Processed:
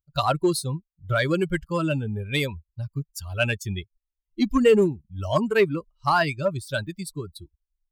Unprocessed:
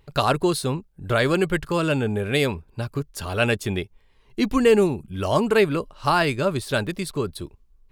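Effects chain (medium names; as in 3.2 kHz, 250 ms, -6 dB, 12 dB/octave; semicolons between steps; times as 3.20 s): expander on every frequency bin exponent 2; in parallel at -8.5 dB: hard clipper -20 dBFS, distortion -10 dB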